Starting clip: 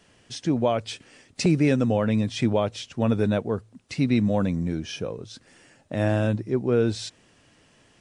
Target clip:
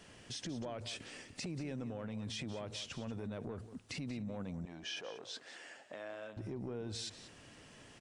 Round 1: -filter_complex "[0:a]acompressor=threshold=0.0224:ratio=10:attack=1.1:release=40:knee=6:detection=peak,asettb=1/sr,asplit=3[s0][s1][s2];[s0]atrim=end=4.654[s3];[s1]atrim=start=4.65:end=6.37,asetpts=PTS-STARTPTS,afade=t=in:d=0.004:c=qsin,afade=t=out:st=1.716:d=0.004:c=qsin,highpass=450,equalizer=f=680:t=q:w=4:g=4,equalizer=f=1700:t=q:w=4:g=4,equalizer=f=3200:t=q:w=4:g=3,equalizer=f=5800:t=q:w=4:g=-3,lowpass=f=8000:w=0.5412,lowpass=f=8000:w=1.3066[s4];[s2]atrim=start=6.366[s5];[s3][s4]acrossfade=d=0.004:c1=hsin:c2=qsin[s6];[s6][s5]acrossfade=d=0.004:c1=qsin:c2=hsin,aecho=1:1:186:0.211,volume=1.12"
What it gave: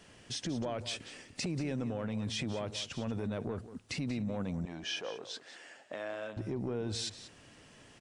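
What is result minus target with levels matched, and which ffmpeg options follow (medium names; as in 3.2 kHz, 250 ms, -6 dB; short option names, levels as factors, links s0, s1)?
compression: peak gain reduction -6.5 dB
-filter_complex "[0:a]acompressor=threshold=0.01:ratio=10:attack=1.1:release=40:knee=6:detection=peak,asettb=1/sr,asplit=3[s0][s1][s2];[s0]atrim=end=4.654[s3];[s1]atrim=start=4.65:end=6.37,asetpts=PTS-STARTPTS,afade=t=in:d=0.004:c=qsin,afade=t=out:st=1.716:d=0.004:c=qsin,highpass=450,equalizer=f=680:t=q:w=4:g=4,equalizer=f=1700:t=q:w=4:g=4,equalizer=f=3200:t=q:w=4:g=3,equalizer=f=5800:t=q:w=4:g=-3,lowpass=f=8000:w=0.5412,lowpass=f=8000:w=1.3066[s4];[s2]atrim=start=6.366[s5];[s3][s4]acrossfade=d=0.004:c1=hsin:c2=qsin[s6];[s6][s5]acrossfade=d=0.004:c1=qsin:c2=hsin,aecho=1:1:186:0.211,volume=1.12"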